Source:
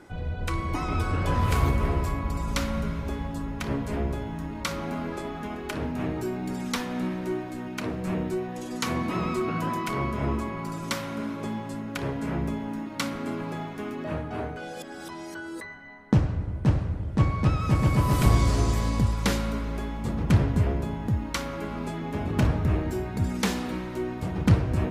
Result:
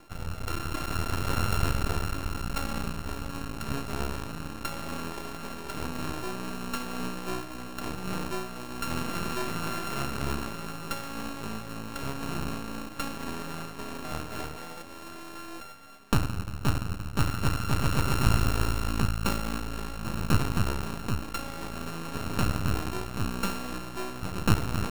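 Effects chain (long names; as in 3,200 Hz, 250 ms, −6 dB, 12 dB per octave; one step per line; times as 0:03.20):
samples sorted by size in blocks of 32 samples
half-wave rectification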